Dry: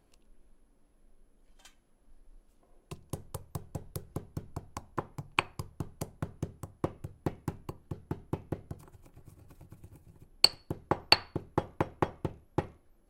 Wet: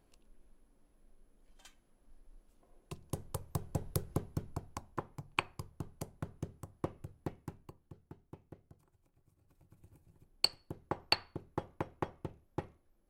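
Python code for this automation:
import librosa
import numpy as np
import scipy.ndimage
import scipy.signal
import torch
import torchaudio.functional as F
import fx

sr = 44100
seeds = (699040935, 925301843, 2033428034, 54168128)

y = fx.gain(x, sr, db=fx.line((2.94, -2.0), (3.99, 5.0), (5.04, -5.0), (7.07, -5.0), (8.23, -17.0), (9.34, -17.0), (9.89, -8.0)))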